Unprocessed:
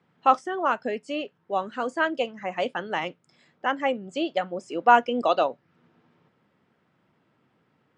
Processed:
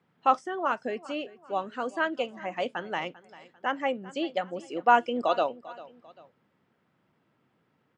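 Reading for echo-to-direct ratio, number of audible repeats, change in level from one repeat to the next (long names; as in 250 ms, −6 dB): −18.5 dB, 2, −7.5 dB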